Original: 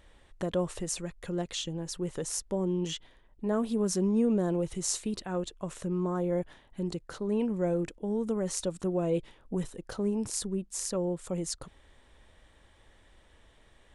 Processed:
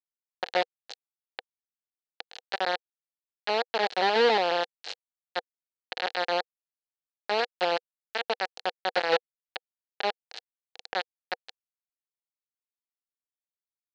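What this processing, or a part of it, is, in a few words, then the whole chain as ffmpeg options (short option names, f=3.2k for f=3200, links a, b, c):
hand-held game console: -af "acrusher=bits=3:mix=0:aa=0.000001,highpass=470,equalizer=f=490:t=q:w=4:g=9,equalizer=f=770:t=q:w=4:g=9,equalizer=f=1.1k:t=q:w=4:g=-6,equalizer=f=1.7k:t=q:w=4:g=6,equalizer=f=2.9k:t=q:w=4:g=4,equalizer=f=4.2k:t=q:w=4:g=10,lowpass=f=4.4k:w=0.5412,lowpass=f=4.4k:w=1.3066"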